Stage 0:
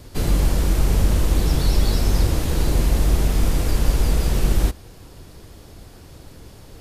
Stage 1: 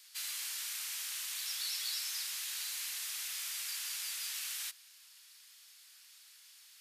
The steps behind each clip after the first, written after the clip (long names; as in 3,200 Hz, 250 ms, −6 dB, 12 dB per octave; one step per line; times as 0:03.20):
Bessel high-pass filter 2,600 Hz, order 4
level −4 dB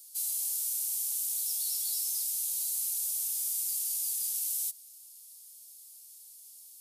drawn EQ curve 820 Hz 0 dB, 1,500 Hz −27 dB, 10,000 Hz +10 dB
level +1.5 dB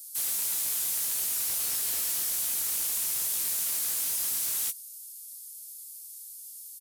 spectral tilt +3 dB per octave
wave folding −22 dBFS
double-tracking delay 17 ms −8 dB
level −3.5 dB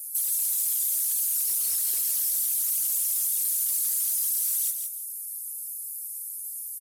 spectral envelope exaggerated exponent 2
downward compressor, threshold −32 dBFS, peak gain reduction 5 dB
repeating echo 165 ms, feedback 22%, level −6 dB
level +7.5 dB